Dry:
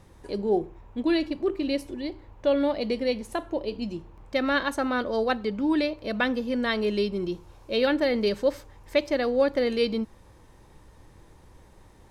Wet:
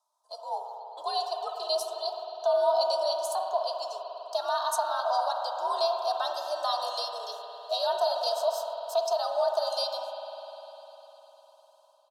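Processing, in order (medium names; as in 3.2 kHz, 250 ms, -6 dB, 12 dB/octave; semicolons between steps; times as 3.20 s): compression 2:1, threshold -26 dBFS, peak gain reduction 5.5 dB; Chebyshev band-stop 910–4500 Hz, order 2; level rider gain up to 10 dB; steep high-pass 640 Hz 36 dB/octave; gate -48 dBFS, range -16 dB; peak limiter -21 dBFS, peak gain reduction 8.5 dB; comb 3.4 ms, depth 50%; frequency shift +79 Hz; reverberation RT60 4.1 s, pre-delay 50 ms, DRR 2 dB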